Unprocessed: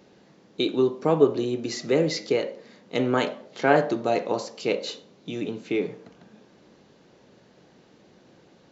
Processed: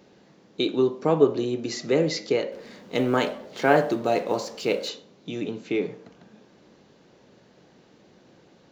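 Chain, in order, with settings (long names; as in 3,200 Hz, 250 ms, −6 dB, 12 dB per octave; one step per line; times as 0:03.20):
0:02.52–0:04.89: mu-law and A-law mismatch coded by mu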